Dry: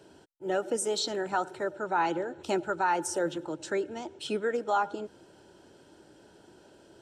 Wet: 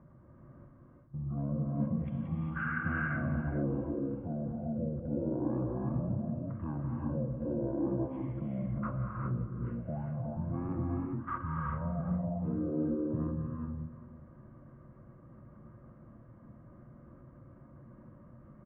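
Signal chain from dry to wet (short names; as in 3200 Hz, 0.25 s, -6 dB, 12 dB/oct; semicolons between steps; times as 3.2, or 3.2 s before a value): LPF 3500 Hz 24 dB/oct; level quantiser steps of 21 dB; wide varispeed 0.376×; tapped delay 0.185/0.418 s -15/-14 dB; non-linear reverb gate 0.42 s rising, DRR -1 dB; gain +6 dB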